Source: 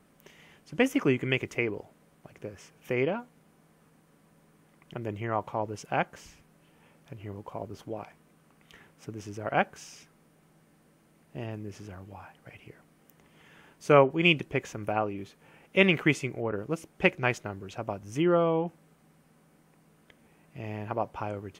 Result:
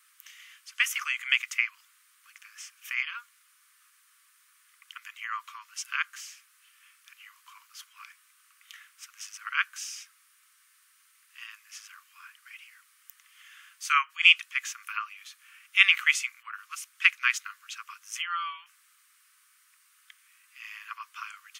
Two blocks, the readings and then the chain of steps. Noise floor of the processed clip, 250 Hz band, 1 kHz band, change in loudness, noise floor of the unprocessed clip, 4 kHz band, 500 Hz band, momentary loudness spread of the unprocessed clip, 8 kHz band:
-64 dBFS, under -40 dB, -3.0 dB, +2.5 dB, -63 dBFS, +7.5 dB, under -40 dB, 21 LU, +10.0 dB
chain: steep high-pass 1100 Hz 96 dB/oct; high shelf 2100 Hz +11 dB

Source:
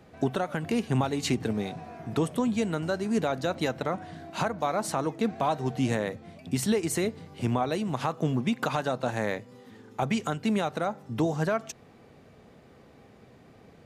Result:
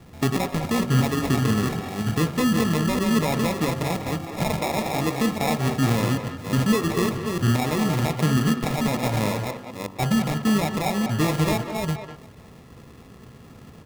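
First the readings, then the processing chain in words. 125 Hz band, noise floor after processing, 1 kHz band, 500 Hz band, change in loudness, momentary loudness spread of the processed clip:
+9.0 dB, -46 dBFS, +4.0 dB, +2.5 dB, +6.0 dB, 6 LU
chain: reverse delay 0.299 s, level -5.5 dB; low-pass opened by the level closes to 1300 Hz, open at -22.5 dBFS; low shelf 230 Hz +12 dB; in parallel at +2 dB: limiter -16 dBFS, peak gain reduction 8 dB; on the sum: sample-and-hold 29×; de-hum 48.18 Hz, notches 28; speakerphone echo 0.2 s, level -7 dB; gain -5.5 dB

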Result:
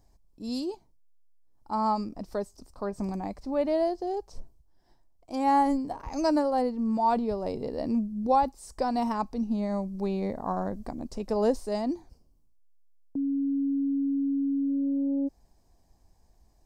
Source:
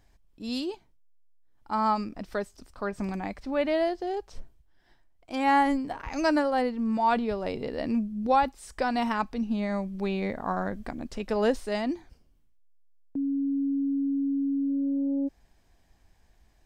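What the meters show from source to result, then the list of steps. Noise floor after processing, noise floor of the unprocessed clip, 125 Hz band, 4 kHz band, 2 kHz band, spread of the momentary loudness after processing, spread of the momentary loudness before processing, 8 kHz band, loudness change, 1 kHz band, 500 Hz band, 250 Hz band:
-63 dBFS, -63 dBFS, 0.0 dB, -5.0 dB, -11.5 dB, 11 LU, 10 LU, 0.0 dB, -0.5 dB, -0.5 dB, 0.0 dB, 0.0 dB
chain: band shelf 2200 Hz -11.5 dB

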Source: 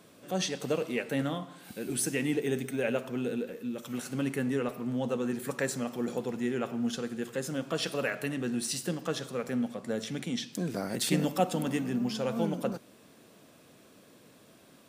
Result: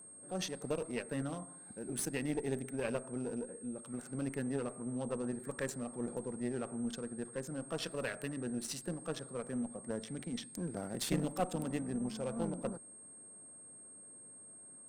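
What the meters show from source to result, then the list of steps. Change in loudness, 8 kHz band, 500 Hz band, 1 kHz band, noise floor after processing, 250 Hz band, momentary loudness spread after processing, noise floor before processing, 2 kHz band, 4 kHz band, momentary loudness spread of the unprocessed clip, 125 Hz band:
-7.0 dB, -5.0 dB, -7.0 dB, -7.5 dB, -55 dBFS, -7.0 dB, 15 LU, -58 dBFS, -9.0 dB, -9.0 dB, 6 LU, -6.0 dB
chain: Wiener smoothing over 15 samples; tube stage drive 19 dB, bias 0.8; whine 8500 Hz -50 dBFS; gain -2 dB

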